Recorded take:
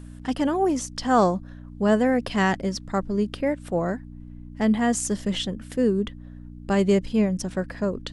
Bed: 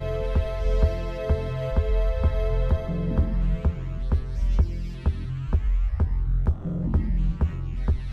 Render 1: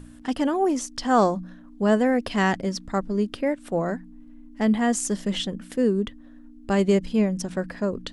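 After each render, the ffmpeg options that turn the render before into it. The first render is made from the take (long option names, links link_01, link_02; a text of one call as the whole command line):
ffmpeg -i in.wav -af "bandreject=frequency=60:width_type=h:width=4,bandreject=frequency=120:width_type=h:width=4,bandreject=frequency=180:width_type=h:width=4" out.wav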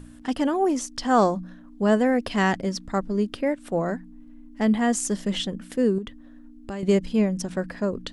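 ffmpeg -i in.wav -filter_complex "[0:a]asettb=1/sr,asplit=3[link_01][link_02][link_03];[link_01]atrim=end=5.984[link_04];[link_02]atrim=start=5.98:end=6.83,asetpts=PTS-STARTPTS,afade=type=in:duration=0.004:curve=qsin,afade=type=out:start_time=0.846:duration=0.004:curve=qsin,acompressor=threshold=-29dB:ratio=6:attack=3.2:release=140:knee=1:detection=peak[link_05];[link_03]atrim=start=6.826[link_06];[link_04][link_05]acrossfade=duration=0.004:curve1=hsin:curve2=qsin[link_07];[link_07][link_06]acrossfade=duration=0.004:curve1=qsin:curve2=hsin" out.wav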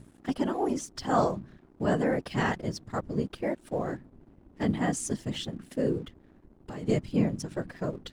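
ffmpeg -i in.wav -af "afftfilt=real='hypot(re,im)*cos(2*PI*random(0))':imag='hypot(re,im)*sin(2*PI*random(1))':win_size=512:overlap=0.75,aeval=exprs='sgn(val(0))*max(abs(val(0))-0.00141,0)':channel_layout=same" out.wav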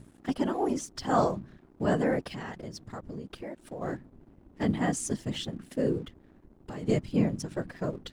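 ffmpeg -i in.wav -filter_complex "[0:a]asplit=3[link_01][link_02][link_03];[link_01]afade=type=out:start_time=2.3:duration=0.02[link_04];[link_02]acompressor=threshold=-36dB:ratio=5:attack=3.2:release=140:knee=1:detection=peak,afade=type=in:start_time=2.3:duration=0.02,afade=type=out:start_time=3.81:duration=0.02[link_05];[link_03]afade=type=in:start_time=3.81:duration=0.02[link_06];[link_04][link_05][link_06]amix=inputs=3:normalize=0" out.wav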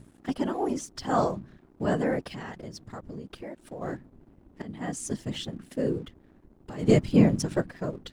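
ffmpeg -i in.wav -filter_complex "[0:a]asplit=3[link_01][link_02][link_03];[link_01]afade=type=out:start_time=6.78:duration=0.02[link_04];[link_02]acontrast=82,afade=type=in:start_time=6.78:duration=0.02,afade=type=out:start_time=7.6:duration=0.02[link_05];[link_03]afade=type=in:start_time=7.6:duration=0.02[link_06];[link_04][link_05][link_06]amix=inputs=3:normalize=0,asplit=2[link_07][link_08];[link_07]atrim=end=4.62,asetpts=PTS-STARTPTS,afade=type=out:start_time=4.616:duration=0.004:curve=hsin:silence=0.105925[link_09];[link_08]atrim=start=4.62,asetpts=PTS-STARTPTS,afade=type=in:duration=0.53:silence=0.105925[link_10];[link_09][link_10]concat=n=2:v=0:a=1" out.wav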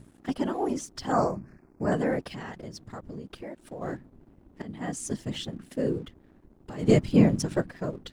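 ffmpeg -i in.wav -filter_complex "[0:a]asettb=1/sr,asplit=3[link_01][link_02][link_03];[link_01]atrim=end=1.124[link_04];[link_02]atrim=start=1.12:end=1.92,asetpts=PTS-STARTPTS,afade=type=in:duration=0.004:curve=qsin,afade=type=out:start_time=0.796:duration=0.004:curve=qsin,asuperstop=centerf=3400:order=8:qfactor=1.8[link_05];[link_03]atrim=start=1.916[link_06];[link_04][link_05]acrossfade=duration=0.004:curve1=hsin:curve2=qsin[link_07];[link_07][link_06]acrossfade=duration=0.004:curve1=qsin:curve2=hsin" out.wav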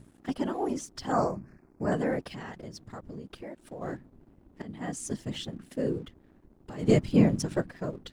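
ffmpeg -i in.wav -af "volume=-2dB" out.wav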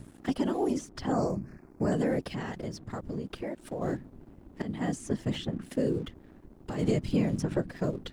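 ffmpeg -i in.wav -filter_complex "[0:a]asplit=2[link_01][link_02];[link_02]alimiter=limit=-22dB:level=0:latency=1,volume=0.5dB[link_03];[link_01][link_03]amix=inputs=2:normalize=0,acrossover=split=590|2700[link_04][link_05][link_06];[link_04]acompressor=threshold=-25dB:ratio=4[link_07];[link_05]acompressor=threshold=-41dB:ratio=4[link_08];[link_06]acompressor=threshold=-47dB:ratio=4[link_09];[link_07][link_08][link_09]amix=inputs=3:normalize=0" out.wav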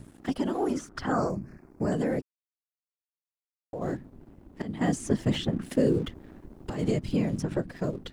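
ffmpeg -i in.wav -filter_complex "[0:a]asettb=1/sr,asplit=3[link_01][link_02][link_03];[link_01]atrim=end=0.554[link_04];[link_02]atrim=start=0.55:end=1.3,asetpts=PTS-STARTPTS,afade=type=in:duration=0.004:curve=qsin,afade=type=out:start_time=0.746:duration=0.004:curve=qsin,equalizer=frequency=1400:width_type=o:width=0.71:gain=12[link_05];[link_03]atrim=start=1.296[link_06];[link_04][link_05]acrossfade=duration=0.004:curve1=hsin:curve2=qsin[link_07];[link_07][link_06]acrossfade=duration=0.004:curve1=qsin:curve2=hsin,asettb=1/sr,asplit=3[link_08][link_09][link_10];[link_08]atrim=end=4.814[link_11];[link_09]atrim=start=4.81:end=6.7,asetpts=PTS-STARTPTS,afade=type=in:duration=0.004:curve=qsin,afade=type=out:start_time=1.886:duration=0.004:curve=qsin,acontrast=28[link_12];[link_10]atrim=start=6.696[link_13];[link_11][link_12]acrossfade=duration=0.004:curve1=hsin:curve2=qsin[link_14];[link_14][link_13]acrossfade=duration=0.004:curve1=qsin:curve2=hsin,asplit=3[link_15][link_16][link_17];[link_15]atrim=end=2.22,asetpts=PTS-STARTPTS,afade=type=out:start_time=2.216:duration=0.004:curve=hsin[link_18];[link_16]atrim=start=2.22:end=3.73,asetpts=PTS-STARTPTS,volume=0[link_19];[link_17]atrim=start=3.73,asetpts=PTS-STARTPTS,afade=type=in:duration=0.004:curve=hsin[link_20];[link_18][link_19][link_20]concat=n=3:v=0:a=1" out.wav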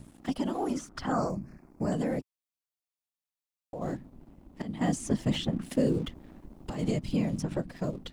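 ffmpeg -i in.wav -af "equalizer=frequency=100:width_type=o:width=0.67:gain=-5,equalizer=frequency=400:width_type=o:width=0.67:gain=-6,equalizer=frequency=1600:width_type=o:width=0.67:gain=-5" out.wav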